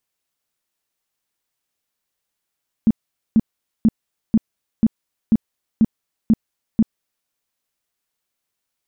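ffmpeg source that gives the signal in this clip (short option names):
-f lavfi -i "aevalsrc='0.355*sin(2*PI*222*mod(t,0.49))*lt(mod(t,0.49),8/222)':d=4.41:s=44100"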